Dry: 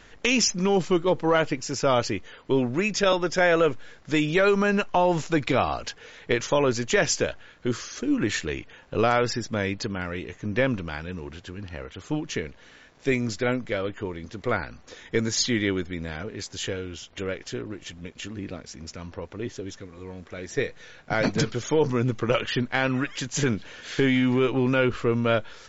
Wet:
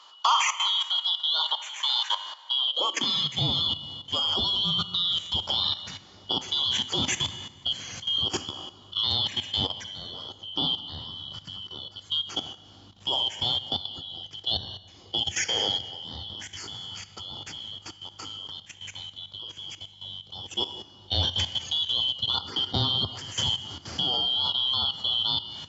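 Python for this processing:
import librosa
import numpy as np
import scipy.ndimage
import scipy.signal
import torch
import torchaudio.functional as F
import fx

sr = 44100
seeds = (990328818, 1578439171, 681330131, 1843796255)

y = fx.band_shuffle(x, sr, order='2413')
y = fx.dmg_buzz(y, sr, base_hz=50.0, harmonics=4, level_db=-54.0, tilt_db=-6, odd_only=False)
y = fx.rev_plate(y, sr, seeds[0], rt60_s=1.5, hf_ratio=0.75, predelay_ms=0, drr_db=6.0)
y = fx.level_steps(y, sr, step_db=13)
y = fx.filter_sweep_highpass(y, sr, from_hz=1000.0, to_hz=91.0, start_s=2.5, end_s=3.46, q=3.9)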